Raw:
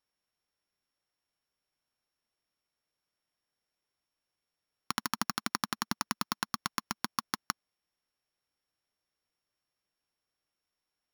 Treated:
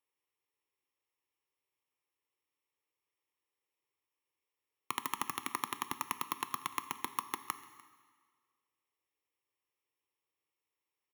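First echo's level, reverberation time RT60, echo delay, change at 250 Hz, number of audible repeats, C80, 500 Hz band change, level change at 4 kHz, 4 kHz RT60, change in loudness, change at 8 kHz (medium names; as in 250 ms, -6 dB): -22.5 dB, 1.7 s, 297 ms, -8.5 dB, 1, 13.5 dB, -2.0 dB, -8.0 dB, 1.5 s, -3.5 dB, -4.5 dB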